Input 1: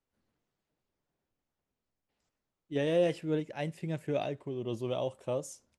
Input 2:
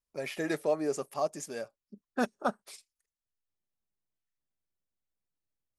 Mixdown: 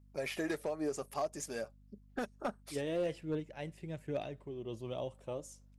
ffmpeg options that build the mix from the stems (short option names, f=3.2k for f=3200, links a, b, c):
-filter_complex "[0:a]volume=-7dB[a];[1:a]acompressor=threshold=-32dB:ratio=6,volume=-0.5dB[b];[a][b]amix=inputs=2:normalize=0,aphaser=in_gain=1:out_gain=1:delay=3.2:decay=0.22:speed=1.2:type=triangular,aeval=exprs='val(0)+0.001*(sin(2*PI*50*n/s)+sin(2*PI*2*50*n/s)/2+sin(2*PI*3*50*n/s)/3+sin(2*PI*4*50*n/s)/4+sin(2*PI*5*50*n/s)/5)':c=same,asoftclip=type=hard:threshold=-28dB"